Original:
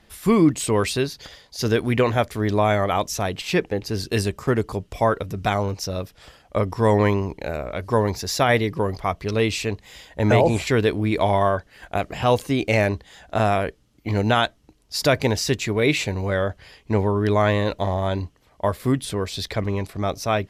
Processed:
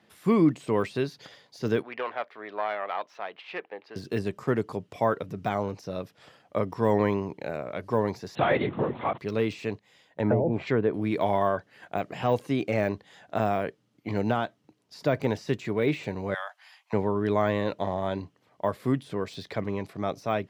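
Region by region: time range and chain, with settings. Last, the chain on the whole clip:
1.82–3.96 self-modulated delay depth 0.1 ms + HPF 750 Hz + air absorption 340 m
8.35–9.18 zero-crossing step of -30.5 dBFS + LPC vocoder at 8 kHz whisper
9.73–10.94 gate -41 dBFS, range -9 dB + treble ducked by the level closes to 460 Hz, closed at -11.5 dBFS
16.34–16.93 steep high-pass 720 Hz 48 dB/oct + high shelf 11000 Hz +10 dB
whole clip: de-esser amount 80%; HPF 120 Hz 24 dB/oct; high shelf 4800 Hz -9.5 dB; gain -4.5 dB

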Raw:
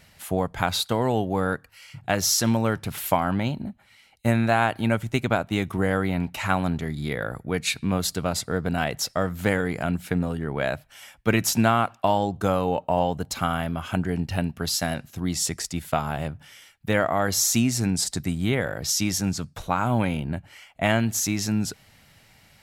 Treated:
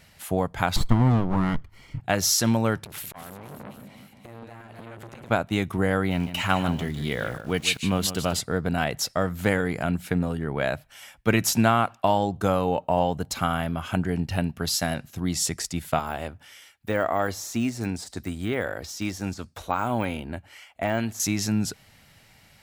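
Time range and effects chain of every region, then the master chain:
0.76–2 minimum comb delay 0.92 ms + tilt -3 dB/oct
2.84–5.3 compressor 16:1, threshold -30 dBFS + split-band echo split 520 Hz, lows 0.177 s, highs 0.256 s, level -9 dB + core saturation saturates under 1500 Hz
6.11–8.4 bell 3000 Hz +12 dB 0.21 oct + sample gate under -42 dBFS + echo 0.153 s -11.5 dB
15.99–21.2 HPF 61 Hz + bell 150 Hz -12.5 dB + de-esser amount 95%
whole clip: dry

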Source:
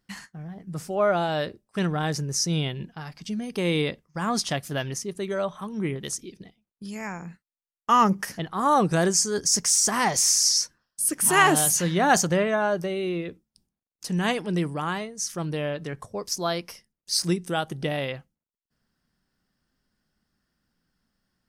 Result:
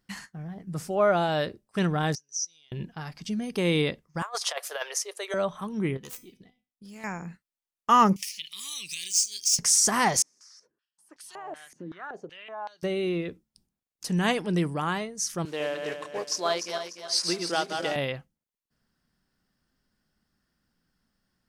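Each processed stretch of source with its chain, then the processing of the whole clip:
2.15–2.72 band-pass 5900 Hz, Q 13 + de-esser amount 40%
4.22–5.34 steep high-pass 470 Hz 48 dB/oct + dynamic EQ 1100 Hz, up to +6 dB, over -40 dBFS, Q 1.7 + negative-ratio compressor -30 dBFS, ratio -0.5
5.97–7.04 self-modulated delay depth 0.15 ms + resonator 250 Hz, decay 0.32 s, mix 70%
8.16–9.59 median filter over 3 samples + elliptic high-pass 2400 Hz + upward compressor, threshold -26 dBFS
10.22–12.83 compressor 5:1, threshold -25 dBFS + stepped band-pass 5.3 Hz 290–4200 Hz
15.45–17.96 regenerating reverse delay 0.148 s, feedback 60%, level -5 dB + modulation noise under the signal 22 dB + BPF 410–7000 Hz
whole clip: dry

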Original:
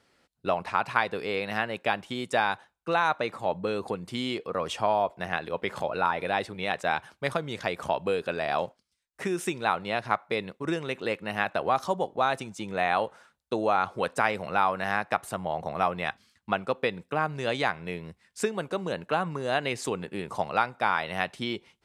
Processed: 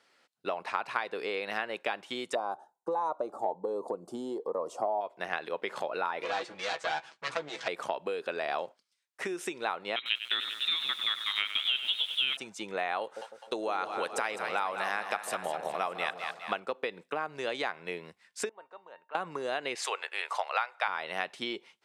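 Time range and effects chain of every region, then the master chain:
2.35–5.01 EQ curve 110 Hz 0 dB, 900 Hz +10 dB, 2300 Hz -23 dB, 7300 Hz -2 dB + cascading phaser rising 1.3 Hz
6.22–7.68 minimum comb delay 6.1 ms + LPF 8200 Hz 24 dB/oct + doubler 14 ms -8 dB
9.96–12.37 inverted band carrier 3900 Hz + lo-fi delay 97 ms, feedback 80%, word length 7-bit, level -11.5 dB
13.01–16.6 high shelf 3300 Hz +8.5 dB + split-band echo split 660 Hz, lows 0.153 s, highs 0.205 s, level -9.5 dB
18.49–19.15 band-pass 880 Hz, Q 1.2 + resonator 910 Hz, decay 0.21 s, mix 80%
19.75–20.88 HPF 560 Hz 24 dB/oct + bell 2200 Hz +7.5 dB 2.4 oct
whole clip: dynamic EQ 370 Hz, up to +6 dB, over -40 dBFS, Q 1.1; compressor, threshold -27 dBFS; weighting filter A

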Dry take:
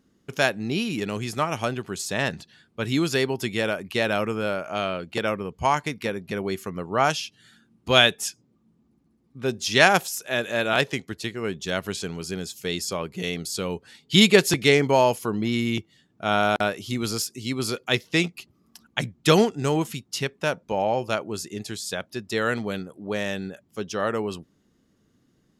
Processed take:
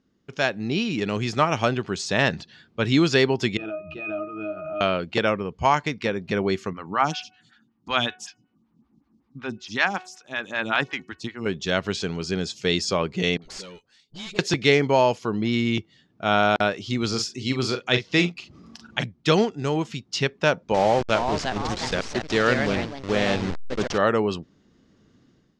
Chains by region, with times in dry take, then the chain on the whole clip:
3.57–4.81 low shelf 190 Hz -6 dB + octave resonator D#, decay 0.25 s + backwards sustainer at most 42 dB/s
6.73–11.46 band shelf 500 Hz -9 dB 1.1 oct + de-hum 369.5 Hz, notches 8 + photocell phaser 5.3 Hz
13.37–14.39 pre-emphasis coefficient 0.8 + tube stage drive 33 dB, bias 0.75 + dispersion highs, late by 49 ms, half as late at 730 Hz
17.08–19.04 doubler 40 ms -8.5 dB + upward compressor, threshold -34 dBFS
20.74–23.98 level-crossing sampler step -29 dBFS + echoes that change speed 0.41 s, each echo +3 st, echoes 2, each echo -6 dB
whole clip: AGC gain up to 11.5 dB; LPF 6100 Hz 24 dB/oct; gain -4.5 dB

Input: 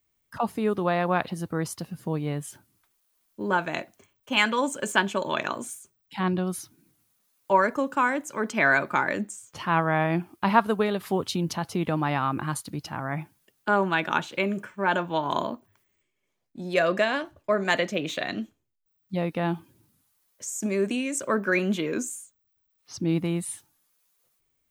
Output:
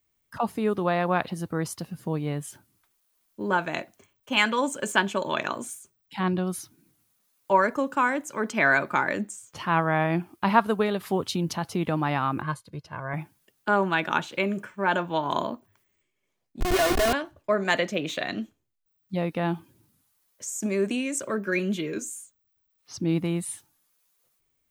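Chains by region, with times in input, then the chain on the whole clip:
12.42–13.14 LPF 3400 Hz 6 dB/oct + comb 1.9 ms, depth 64% + upward expander, over -46 dBFS
16.6–17.13 notch 1600 Hz, Q 21 + Schmitt trigger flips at -29 dBFS + comb 2.8 ms, depth 88%
21.28–22.16 bell 940 Hz -7.5 dB 1.4 oct + notch comb 250 Hz
whole clip: dry

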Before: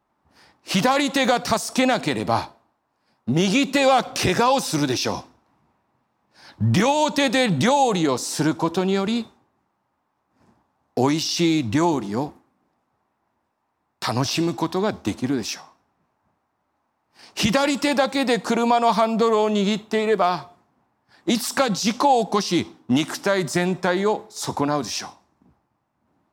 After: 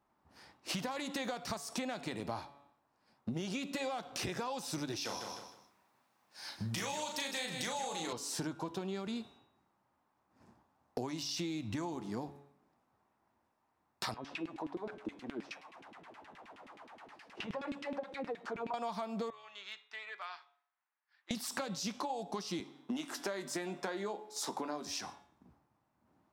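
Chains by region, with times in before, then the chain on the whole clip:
5.05–8.13 tilt +3 dB/oct + doubler 36 ms -4.5 dB + feedback echo 0.155 s, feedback 27%, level -9.5 dB
14.14–18.74 delta modulation 64 kbps, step -36 dBFS + compressor 2:1, threshold -23 dBFS + LFO band-pass saw down 9.5 Hz 230–2900 Hz
19.3–21.31 ladder band-pass 2300 Hz, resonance 25% + overloaded stage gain 28 dB
22.6–24.87 HPF 210 Hz 24 dB/oct + doubler 20 ms -11.5 dB
whole clip: de-hum 141.8 Hz, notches 28; compressor 8:1, threshold -31 dBFS; gain -5 dB

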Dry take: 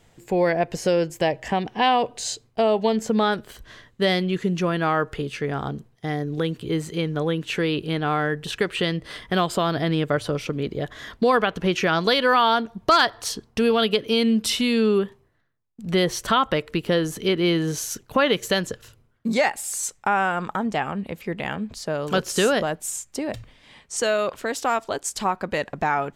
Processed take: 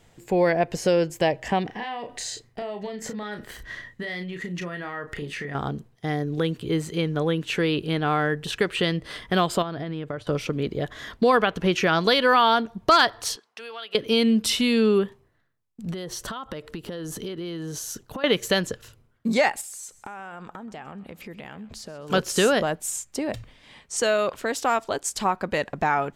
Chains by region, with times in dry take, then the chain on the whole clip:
1.65–5.55 bell 1900 Hz +15 dB 0.21 oct + compressor 16:1, threshold -29 dBFS + doubler 34 ms -7 dB
9.62–10.27 LPF 2500 Hz 6 dB/oct + expander -30 dBFS + compressor 12:1, threshold -26 dBFS
13.36–13.95 HPF 870 Hz + high shelf 8600 Hz -11 dB + compressor 2:1, threshold -42 dBFS
15.91–18.24 bell 2300 Hz -6.5 dB 0.46 oct + compressor 20:1, threshold -29 dBFS
19.61–22.1 compressor, threshold -36 dBFS + feedback echo 0.13 s, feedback 38%, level -19 dB
whole clip: dry

